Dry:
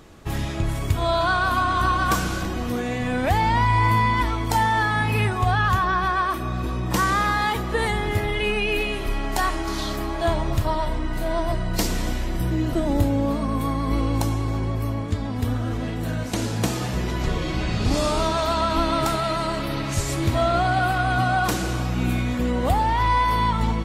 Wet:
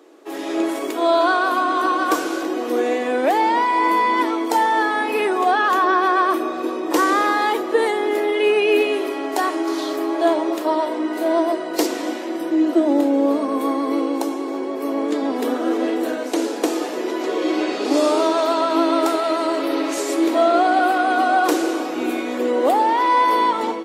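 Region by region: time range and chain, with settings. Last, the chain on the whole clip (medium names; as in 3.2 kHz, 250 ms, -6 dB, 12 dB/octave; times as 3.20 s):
11.86–13.14 s: treble shelf 11 kHz -9 dB + band-stop 420 Hz, Q 5.7
whole clip: elliptic high-pass 290 Hz, stop band 70 dB; peaking EQ 390 Hz +10 dB 1.6 oct; level rider; trim -5 dB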